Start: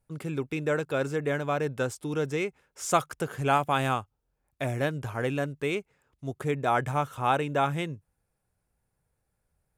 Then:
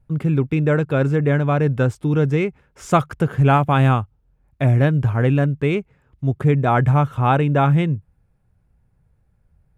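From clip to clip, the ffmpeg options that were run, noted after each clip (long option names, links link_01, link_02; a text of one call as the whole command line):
ffmpeg -i in.wav -af "bass=frequency=250:gain=12,treble=frequency=4000:gain=-12,volume=6.5dB" out.wav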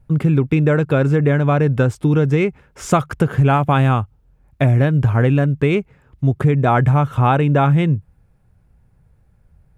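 ffmpeg -i in.wav -af "acompressor=threshold=-18dB:ratio=4,volume=6.5dB" out.wav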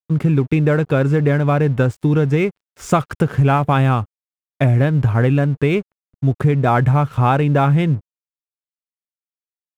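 ffmpeg -i in.wav -af "aeval=exprs='sgn(val(0))*max(abs(val(0))-0.00944,0)':channel_layout=same" out.wav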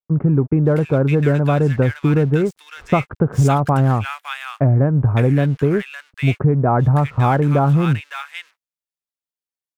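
ffmpeg -i in.wav -filter_complex "[0:a]acrossover=split=1400[link_01][link_02];[link_02]adelay=560[link_03];[link_01][link_03]amix=inputs=2:normalize=0" out.wav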